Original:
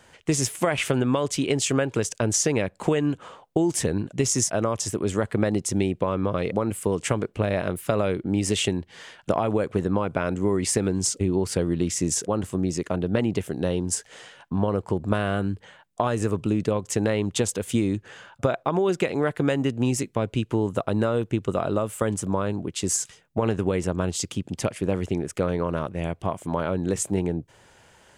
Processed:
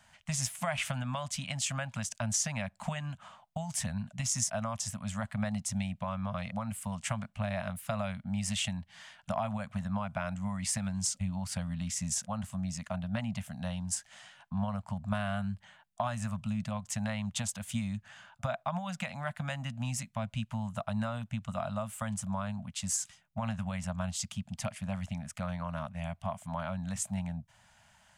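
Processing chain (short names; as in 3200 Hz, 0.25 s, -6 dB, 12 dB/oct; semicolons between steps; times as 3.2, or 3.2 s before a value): Chebyshev band-stop 220–640 Hz, order 3; gain -7 dB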